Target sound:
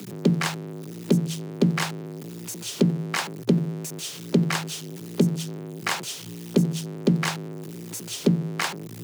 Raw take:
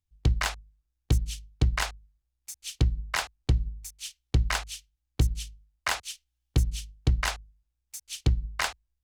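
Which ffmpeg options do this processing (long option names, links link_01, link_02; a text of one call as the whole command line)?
ffmpeg -i in.wav -af "aeval=exprs='val(0)+0.5*0.0237*sgn(val(0))':channel_layout=same,equalizer=frequency=270:width=1.2:gain=12,afreqshift=110" out.wav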